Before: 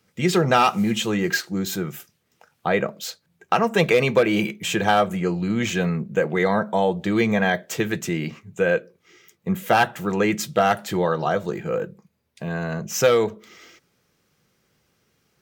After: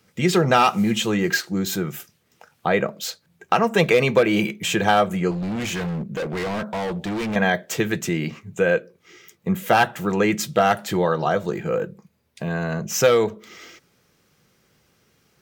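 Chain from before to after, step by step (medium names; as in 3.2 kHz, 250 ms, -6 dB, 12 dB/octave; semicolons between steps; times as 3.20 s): in parallel at -3 dB: compression 4:1, threshold -35 dBFS, peak gain reduction 18.5 dB; 5.31–7.36 s: on the sum: hard clipper -24 dBFS, distortion -12 dB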